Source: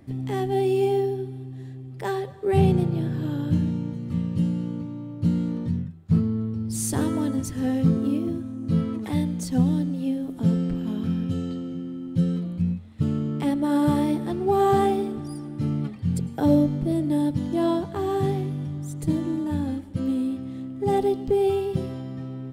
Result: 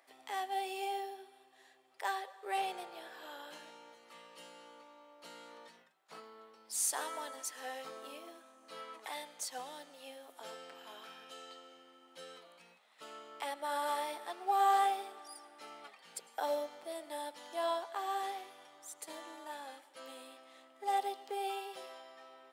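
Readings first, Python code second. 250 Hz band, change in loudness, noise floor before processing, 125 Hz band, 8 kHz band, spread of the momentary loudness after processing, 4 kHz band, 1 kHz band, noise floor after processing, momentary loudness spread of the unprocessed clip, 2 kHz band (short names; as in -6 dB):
-32.5 dB, -13.5 dB, -38 dBFS, under -40 dB, -3.5 dB, 20 LU, -3.5 dB, -4.5 dB, -64 dBFS, 10 LU, -3.5 dB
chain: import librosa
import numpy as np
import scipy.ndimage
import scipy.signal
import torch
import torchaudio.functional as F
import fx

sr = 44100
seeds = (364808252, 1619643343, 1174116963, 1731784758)

y = scipy.signal.sosfilt(scipy.signal.butter(4, 670.0, 'highpass', fs=sr, output='sos'), x)
y = y * librosa.db_to_amplitude(-3.5)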